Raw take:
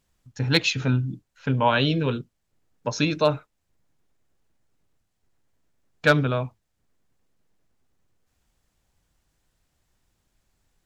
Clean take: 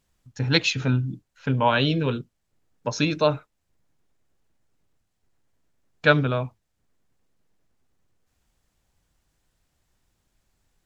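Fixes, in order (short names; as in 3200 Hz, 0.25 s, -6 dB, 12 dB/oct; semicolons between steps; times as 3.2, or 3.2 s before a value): clip repair -8 dBFS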